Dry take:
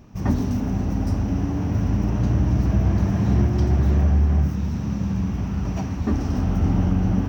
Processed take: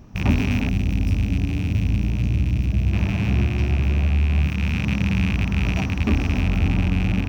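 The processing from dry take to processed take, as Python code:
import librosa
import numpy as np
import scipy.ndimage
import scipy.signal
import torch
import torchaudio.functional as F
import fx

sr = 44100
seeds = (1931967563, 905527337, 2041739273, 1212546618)

y = fx.rattle_buzz(x, sr, strikes_db=-24.0, level_db=-17.0)
y = fx.low_shelf(y, sr, hz=84.0, db=6.0)
y = fx.rider(y, sr, range_db=3, speed_s=0.5)
y = fx.peak_eq(y, sr, hz=1200.0, db=-10.5, octaves=2.9, at=(0.69, 2.93))
y = F.gain(torch.from_numpy(y), -2.0).numpy()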